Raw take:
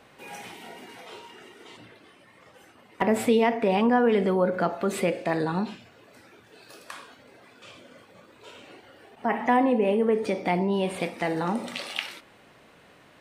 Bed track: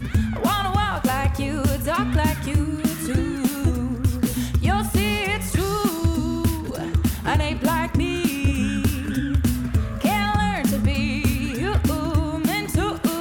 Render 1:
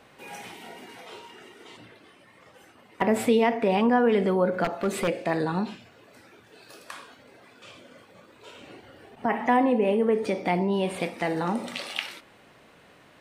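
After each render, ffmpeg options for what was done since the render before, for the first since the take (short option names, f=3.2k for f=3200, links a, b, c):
-filter_complex "[0:a]asettb=1/sr,asplit=3[a][b][c];[a]atrim=end=4.644[d];[b]atrim=start=4.64:end=5.08,asetpts=PTS-STARTPTS,afade=t=in:d=0.004:c=qsin,afade=t=out:st=0.436:d=0.004:c=qsin,aeval=exprs='0.119*(abs(mod(val(0)/0.119+3,4)-2)-1)':c=same[e];[c]atrim=start=5.076[f];[d][e]acrossfade=d=0.004:c1=hsin:c2=qsin[g];[g][f]acrossfade=d=0.004:c1=qsin:c2=hsin,asettb=1/sr,asplit=3[h][i][j];[h]atrim=end=8.614[k];[i]atrim=start=8.61:end=9.26,asetpts=PTS-STARTPTS,afade=t=in:d=0.004:c=qsin,afade=t=out:st=0.646:d=0.004:c=qsin,lowshelf=f=250:g=8.5[l];[j]atrim=start=9.256[m];[k][l]acrossfade=d=0.004:c1=hsin:c2=qsin[n];[n][m]acrossfade=d=0.004:c1=qsin:c2=hsin"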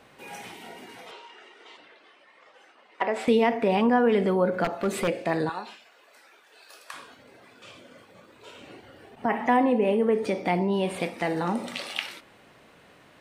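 -filter_complex "[0:a]asettb=1/sr,asplit=3[a][b][c];[a]atrim=end=1.114[d];[b]atrim=start=1.11:end=3.28,asetpts=PTS-STARTPTS,afade=t=in:d=0.004:c=qsin,afade=t=out:st=2.166:d=0.004:c=qsin,highpass=500,lowpass=5.2k[e];[c]atrim=start=3.276[f];[d][e]acrossfade=d=0.004:c1=hsin:c2=qsin[g];[g][f]acrossfade=d=0.004:c1=qsin:c2=hsin,asettb=1/sr,asplit=3[h][i][j];[h]atrim=end=5.494[k];[i]atrim=start=5.49:end=6.94,asetpts=PTS-STARTPTS,afade=t=in:d=0.004:c=qsin,afade=t=out:st=1.446:d=0.004:c=qsin,highpass=670[l];[j]atrim=start=6.936[m];[k][l]acrossfade=d=0.004:c1=hsin:c2=qsin[n];[n][m]acrossfade=d=0.004:c1=qsin:c2=hsin"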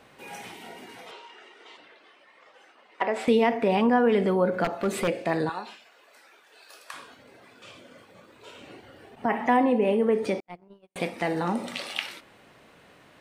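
-filter_complex "[0:a]asettb=1/sr,asplit=3[a][b][c];[a]atrim=end=10.404[d];[b]atrim=start=10.4:end=10.96,asetpts=PTS-STARTPTS,afade=t=in:d=0.004:c=qsin,afade=t=out:st=0.556:d=0.004:c=qsin,agate=range=-57dB:threshold=-21dB:ratio=16:release=100:detection=peak[e];[c]atrim=start=10.956[f];[d][e]acrossfade=d=0.004:c1=hsin:c2=qsin[g];[g][f]acrossfade=d=0.004:c1=qsin:c2=hsin"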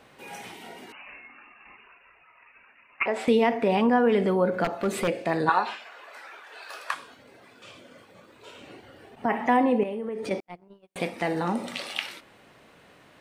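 -filter_complex "[0:a]asettb=1/sr,asplit=3[a][b][c];[a]atrim=end=0.924[d];[b]atrim=start=0.92:end=3.06,asetpts=PTS-STARTPTS,afade=t=in:d=0.004:c=qsin,afade=t=out:st=2.136:d=0.004:c=qsin,lowpass=f=2.6k:t=q:w=0.5098,lowpass=f=2.6k:t=q:w=0.6013,lowpass=f=2.6k:t=q:w=0.9,lowpass=f=2.6k:t=q:w=2.563,afreqshift=-3100[e];[c]atrim=start=3.056[f];[d][e]acrossfade=d=0.004:c1=hsin:c2=qsin[g];[g][f]acrossfade=d=0.004:c1=qsin:c2=hsin,asplit=3[h][i][j];[h]afade=t=out:st=5.47:d=0.02[k];[i]equalizer=f=1.2k:w=0.37:g=13,afade=t=in:st=5.47:d=0.02,afade=t=out:st=6.93:d=0.02[l];[j]afade=t=in:st=6.93:d=0.02[m];[k][l][m]amix=inputs=3:normalize=0,asettb=1/sr,asplit=3[n][o][p];[n]atrim=end=9.834[q];[o]atrim=start=9.83:end=10.31,asetpts=PTS-STARTPTS,afade=t=in:d=0.004:c=qsin,afade=t=out:st=0.476:d=0.004:c=qsin,acompressor=threshold=-29dB:ratio=6:attack=3.2:release=140:knee=1:detection=peak[r];[p]atrim=start=10.306[s];[q][r]acrossfade=d=0.004:c1=hsin:c2=qsin[t];[t][s]acrossfade=d=0.004:c1=qsin:c2=hsin"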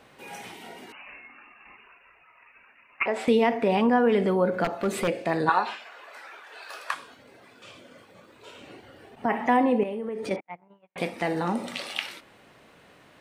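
-filter_complex "[0:a]asettb=1/sr,asplit=3[a][b][c];[a]atrim=end=10.364[d];[b]atrim=start=10.36:end=10.98,asetpts=PTS-STARTPTS,afade=t=in:d=0.004:c=qsin,afade=t=out:st=0.616:d=0.004:c=qsin,highpass=140,equalizer=f=230:t=q:w=4:g=-7,equalizer=f=380:t=q:w=4:g=-9,equalizer=f=890:t=q:w=4:g=6,equalizer=f=2.1k:t=q:w=4:g=6,lowpass=f=2.7k:w=0.5412,lowpass=f=2.7k:w=1.3066[e];[c]atrim=start=10.976[f];[d][e]acrossfade=d=0.004:c1=hsin:c2=qsin[g];[g][f]acrossfade=d=0.004:c1=qsin:c2=hsin"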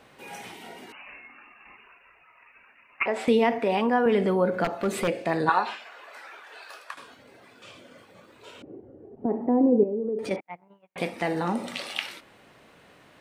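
-filter_complex "[0:a]asettb=1/sr,asplit=3[a][b][c];[a]atrim=end=3.584[d];[b]atrim=start=3.58:end=4.06,asetpts=PTS-STARTPTS,afade=t=in:d=0.004:c=qsin,afade=t=out:st=0.476:d=0.004:c=qsin,highpass=f=280:p=1[e];[c]atrim=start=4.056[f];[d][e]acrossfade=d=0.004:c1=hsin:c2=qsin[g];[g][f]acrossfade=d=0.004:c1=qsin:c2=hsin,asettb=1/sr,asplit=3[h][i][j];[h]atrim=end=8.624[k];[i]atrim=start=8.62:end=10.19,asetpts=PTS-STARTPTS,afade=t=in:d=0.004:c=qsin,afade=t=out:st=1.566:d=0.004:c=qsin,lowpass=f=400:t=q:w=2[l];[j]atrim=start=10.186[m];[k][l]acrossfade=d=0.004:c1=hsin:c2=qsin[n];[n][m]acrossfade=d=0.004:c1=qsin:c2=hsin,asplit=2[o][p];[o]atrim=end=6.97,asetpts=PTS-STARTPTS,afade=t=out:st=6.52:d=0.45:silence=0.251189[q];[p]atrim=start=6.97,asetpts=PTS-STARTPTS,afade=t=in:d=0.004:c=hsin:silence=0.251189[r];[q][r]concat=n=2:v=0:a=1"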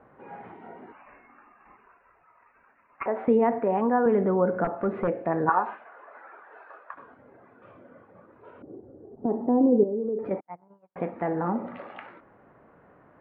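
-af "lowpass=f=1.5k:w=0.5412,lowpass=f=1.5k:w=1.3066"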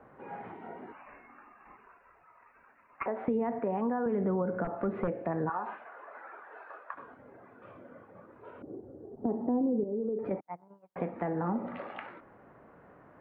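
-filter_complex "[0:a]alimiter=limit=-15dB:level=0:latency=1:release=96,acrossover=split=180[a][b];[b]acompressor=threshold=-33dB:ratio=2.5[c];[a][c]amix=inputs=2:normalize=0"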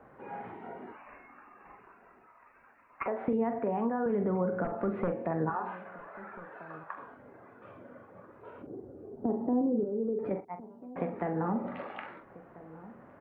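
-filter_complex "[0:a]asplit=2[a][b];[b]adelay=44,volume=-9dB[c];[a][c]amix=inputs=2:normalize=0,asplit=2[d][e];[e]adelay=1341,volume=-18dB,highshelf=f=4k:g=-30.2[f];[d][f]amix=inputs=2:normalize=0"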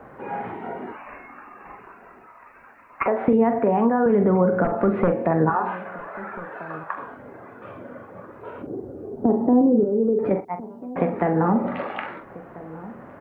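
-af "volume=11.5dB"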